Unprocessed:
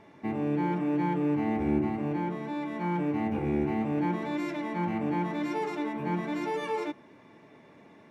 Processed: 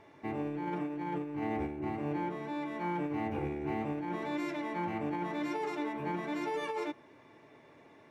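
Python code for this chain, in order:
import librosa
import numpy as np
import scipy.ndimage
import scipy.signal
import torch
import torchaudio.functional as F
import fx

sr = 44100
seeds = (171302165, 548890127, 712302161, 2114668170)

y = fx.peak_eq(x, sr, hz=200.0, db=-10.5, octaves=0.5)
y = fx.over_compress(y, sr, threshold_db=-31.0, ratio=-0.5)
y = y * 10.0 ** (-3.0 / 20.0)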